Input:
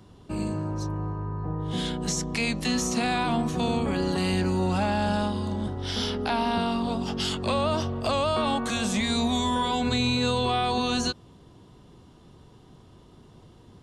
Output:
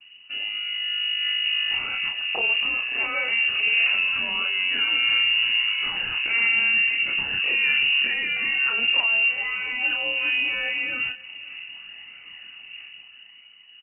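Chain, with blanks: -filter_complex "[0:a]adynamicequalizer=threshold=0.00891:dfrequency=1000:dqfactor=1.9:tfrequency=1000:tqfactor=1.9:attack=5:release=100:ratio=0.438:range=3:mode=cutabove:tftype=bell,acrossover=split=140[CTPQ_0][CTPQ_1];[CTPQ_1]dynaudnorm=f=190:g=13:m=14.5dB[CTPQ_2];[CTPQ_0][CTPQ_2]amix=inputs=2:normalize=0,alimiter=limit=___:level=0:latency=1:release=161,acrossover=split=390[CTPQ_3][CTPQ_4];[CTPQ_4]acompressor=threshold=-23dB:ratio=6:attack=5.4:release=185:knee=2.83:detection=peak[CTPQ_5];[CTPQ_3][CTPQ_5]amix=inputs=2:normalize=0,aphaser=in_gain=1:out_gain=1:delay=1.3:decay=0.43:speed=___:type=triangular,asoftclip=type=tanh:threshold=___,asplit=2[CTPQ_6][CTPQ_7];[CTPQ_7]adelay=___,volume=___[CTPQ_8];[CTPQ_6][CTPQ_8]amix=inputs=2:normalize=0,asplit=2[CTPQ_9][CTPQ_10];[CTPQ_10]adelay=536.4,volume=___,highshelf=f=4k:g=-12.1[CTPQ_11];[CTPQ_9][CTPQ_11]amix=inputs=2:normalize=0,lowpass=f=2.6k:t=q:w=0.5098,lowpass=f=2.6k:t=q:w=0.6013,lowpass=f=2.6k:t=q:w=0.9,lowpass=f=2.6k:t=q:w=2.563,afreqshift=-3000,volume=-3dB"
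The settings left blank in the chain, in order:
-11dB, 0.78, -14.5dB, 30, -4.5dB, -21dB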